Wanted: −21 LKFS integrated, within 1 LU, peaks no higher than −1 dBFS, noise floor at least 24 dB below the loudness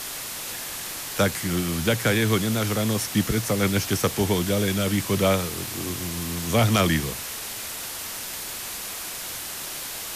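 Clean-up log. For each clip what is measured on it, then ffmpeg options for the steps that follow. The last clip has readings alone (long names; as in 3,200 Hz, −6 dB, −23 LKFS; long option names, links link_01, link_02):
background noise floor −34 dBFS; target noise floor −49 dBFS; integrated loudness −25.0 LKFS; sample peak −8.5 dBFS; target loudness −21.0 LKFS
→ -af "afftdn=noise_reduction=15:noise_floor=-34"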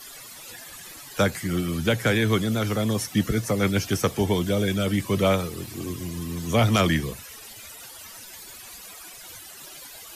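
background noise floor −43 dBFS; target noise floor −49 dBFS
→ -af "afftdn=noise_reduction=6:noise_floor=-43"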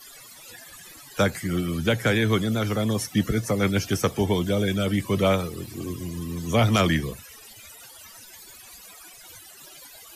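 background noise floor −47 dBFS; target noise floor −49 dBFS
→ -af "afftdn=noise_reduction=6:noise_floor=-47"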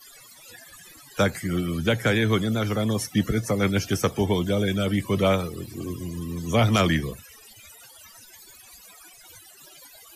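background noise floor −50 dBFS; integrated loudness −24.5 LKFS; sample peak −8.5 dBFS; target loudness −21.0 LKFS
→ -af "volume=3.5dB"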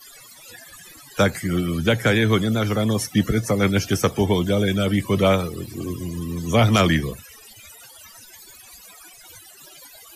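integrated loudness −21.0 LKFS; sample peak −5.0 dBFS; background noise floor −46 dBFS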